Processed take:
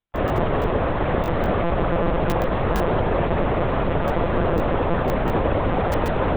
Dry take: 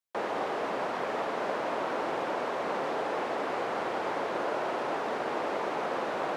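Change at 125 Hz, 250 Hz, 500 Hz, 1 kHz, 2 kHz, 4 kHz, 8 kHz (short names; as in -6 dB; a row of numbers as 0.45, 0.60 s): +28.0 dB, +14.5 dB, +9.5 dB, +6.5 dB, +6.0 dB, +5.0 dB, n/a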